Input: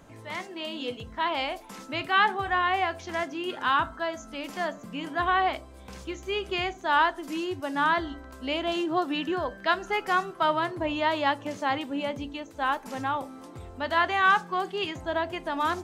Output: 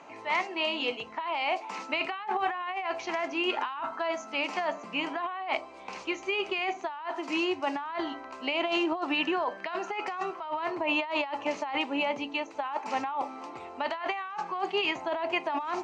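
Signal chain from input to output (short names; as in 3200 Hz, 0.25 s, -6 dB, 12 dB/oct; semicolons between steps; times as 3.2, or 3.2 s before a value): speaker cabinet 470–5400 Hz, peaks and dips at 520 Hz -6 dB, 880 Hz +4 dB, 1600 Hz -8 dB, 2500 Hz +5 dB, 3500 Hz -10 dB, 5100 Hz -5 dB; negative-ratio compressor -34 dBFS, ratio -1; gain +3 dB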